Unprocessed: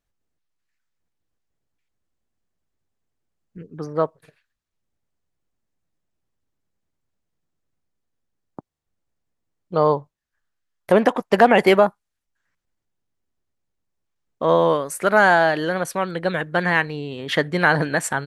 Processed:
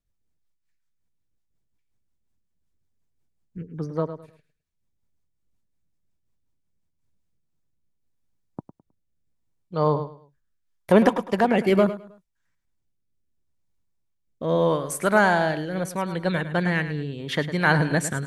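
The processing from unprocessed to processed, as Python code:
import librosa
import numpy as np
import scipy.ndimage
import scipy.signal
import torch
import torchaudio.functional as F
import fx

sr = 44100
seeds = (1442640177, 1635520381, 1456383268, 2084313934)

y = fx.bass_treble(x, sr, bass_db=8, treble_db=4)
y = fx.small_body(y, sr, hz=(960.0, 2300.0, 3600.0), ring_ms=45, db=6)
y = fx.rotary_switch(y, sr, hz=5.5, then_hz=0.75, switch_at_s=6.97)
y = fx.echo_feedback(y, sr, ms=105, feedback_pct=28, wet_db=-12)
y = fx.am_noise(y, sr, seeds[0], hz=5.7, depth_pct=60)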